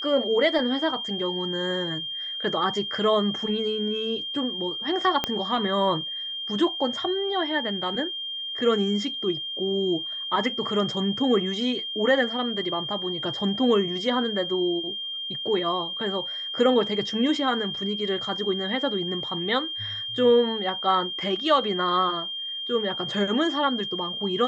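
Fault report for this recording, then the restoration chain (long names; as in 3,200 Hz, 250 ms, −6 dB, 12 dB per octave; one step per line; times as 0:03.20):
whistle 3,200 Hz −30 dBFS
0:05.24: click −9 dBFS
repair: click removal
notch filter 3,200 Hz, Q 30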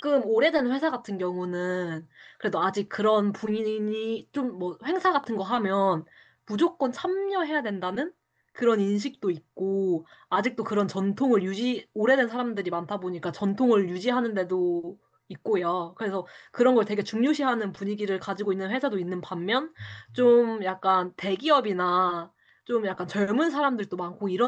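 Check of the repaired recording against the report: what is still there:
0:05.24: click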